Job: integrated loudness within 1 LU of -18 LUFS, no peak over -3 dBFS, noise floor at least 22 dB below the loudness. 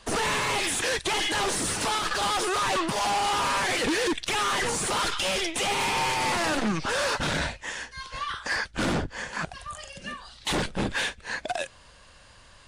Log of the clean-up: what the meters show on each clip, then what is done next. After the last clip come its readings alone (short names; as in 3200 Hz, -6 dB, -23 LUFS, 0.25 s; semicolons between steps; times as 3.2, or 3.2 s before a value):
loudness -26.5 LUFS; peak -20.0 dBFS; loudness target -18.0 LUFS
-> gain +8.5 dB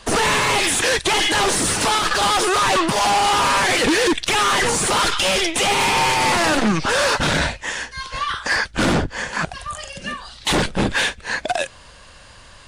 loudness -18.0 LUFS; peak -11.5 dBFS; noise floor -44 dBFS